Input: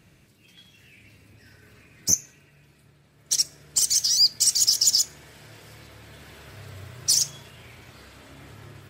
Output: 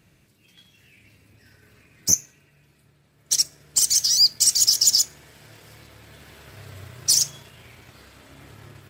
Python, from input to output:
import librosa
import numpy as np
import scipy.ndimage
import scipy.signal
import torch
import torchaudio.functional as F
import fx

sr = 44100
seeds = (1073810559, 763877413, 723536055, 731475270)

p1 = fx.high_shelf(x, sr, hz=12000.0, db=4.0)
p2 = np.sign(p1) * np.maximum(np.abs(p1) - 10.0 ** (-46.5 / 20.0), 0.0)
p3 = p1 + F.gain(torch.from_numpy(p2), -4.0).numpy()
y = F.gain(torch.from_numpy(p3), -2.5).numpy()